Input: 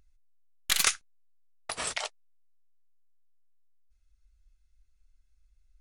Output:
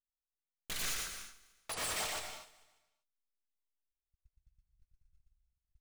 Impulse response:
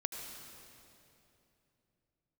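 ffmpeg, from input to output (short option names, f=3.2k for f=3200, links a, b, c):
-filter_complex "[0:a]agate=range=-38dB:threshold=-56dB:ratio=16:detection=peak,dynaudnorm=f=390:g=3:m=12dB,asoftclip=type=hard:threshold=-32.5dB,aecho=1:1:147|294|441|588:0.106|0.0561|0.0298|0.0158,asplit=2[a][b];[1:a]atrim=start_sample=2205,afade=t=out:st=0.31:d=0.01,atrim=end_sample=14112,adelay=118[c];[b][c]afir=irnorm=-1:irlink=0,volume=-0.5dB[d];[a][d]amix=inputs=2:normalize=0,volume=-5dB"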